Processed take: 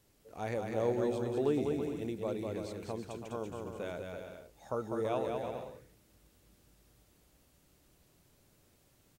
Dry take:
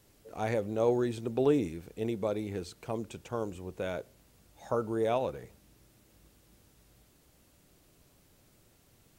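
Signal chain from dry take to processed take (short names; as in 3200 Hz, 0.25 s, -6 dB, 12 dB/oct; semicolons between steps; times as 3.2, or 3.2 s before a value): bouncing-ball echo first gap 0.2 s, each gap 0.65×, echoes 5; gain -5.5 dB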